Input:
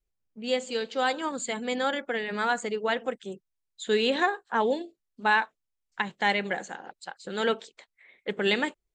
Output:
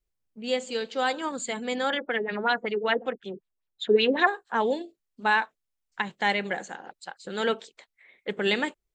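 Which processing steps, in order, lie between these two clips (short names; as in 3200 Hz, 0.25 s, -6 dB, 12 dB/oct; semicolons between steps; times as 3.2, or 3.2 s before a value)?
1.9–4.27 LFO low-pass sine 5.3 Hz 330–4000 Hz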